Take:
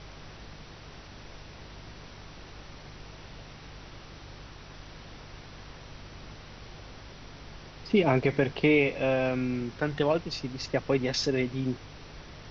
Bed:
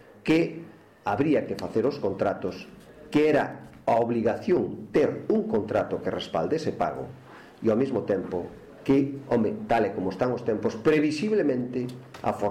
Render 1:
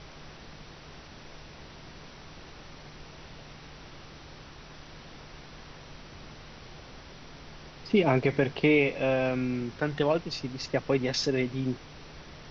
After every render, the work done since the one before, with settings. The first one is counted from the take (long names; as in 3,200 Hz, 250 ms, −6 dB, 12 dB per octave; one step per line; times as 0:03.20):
hum removal 50 Hz, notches 2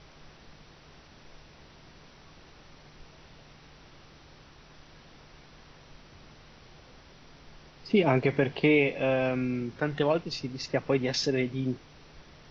noise reduction from a noise print 6 dB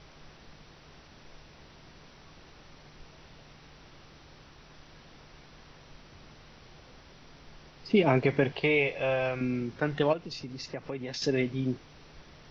0:08.52–0:09.41: parametric band 240 Hz −13.5 dB 0.83 octaves
0:10.13–0:11.22: downward compressor 2.5 to 1, threshold −37 dBFS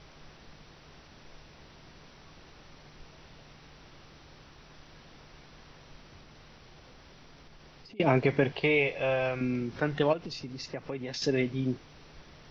0:06.19–0:08.00: downward compressor 10 to 1, threshold −48 dBFS
0:09.55–0:10.31: upward compression, threshold −33 dBFS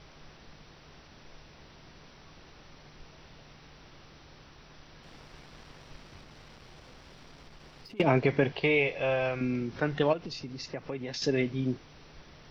0:05.03–0:08.02: leveller curve on the samples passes 1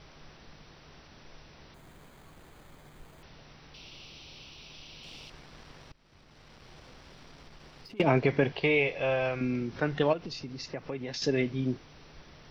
0:01.74–0:03.23: bad sample-rate conversion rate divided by 8×, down filtered, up hold
0:03.74–0:05.30: high shelf with overshoot 2,200 Hz +7 dB, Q 3
0:05.92–0:06.73: fade in, from −22 dB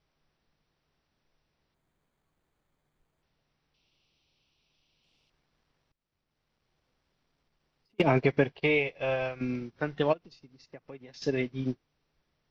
in parallel at +0.5 dB: brickwall limiter −23 dBFS, peak gain reduction 11.5 dB
on the sum: expander for the loud parts 2.5 to 1, over −39 dBFS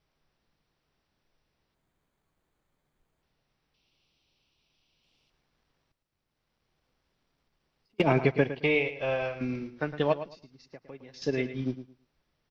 repeating echo 110 ms, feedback 20%, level −12 dB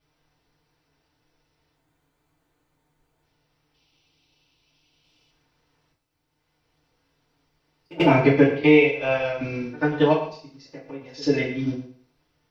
echo ahead of the sound 89 ms −22 dB
feedback delay network reverb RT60 0.42 s, low-frequency decay 0.8×, high-frequency decay 0.9×, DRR −6.5 dB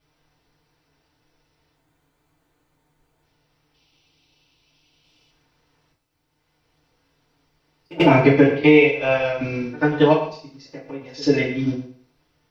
level +3.5 dB
brickwall limiter −2 dBFS, peak gain reduction 2.5 dB